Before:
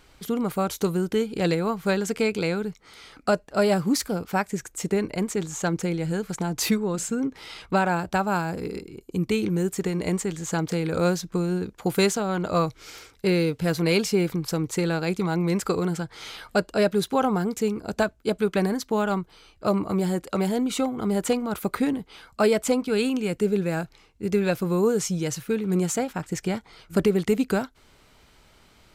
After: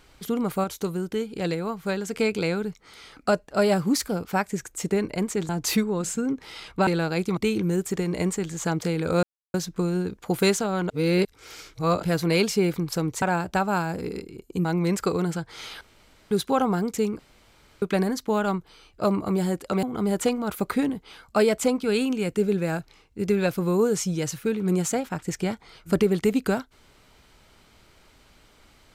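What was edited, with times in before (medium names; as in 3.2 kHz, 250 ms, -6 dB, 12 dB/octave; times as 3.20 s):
0.64–2.13 s: gain -4 dB
5.49–6.43 s: delete
7.81–9.24 s: swap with 14.78–15.28 s
11.10 s: insert silence 0.31 s
12.46–13.59 s: reverse
16.44–16.94 s: room tone
17.82–18.45 s: room tone
20.46–20.87 s: delete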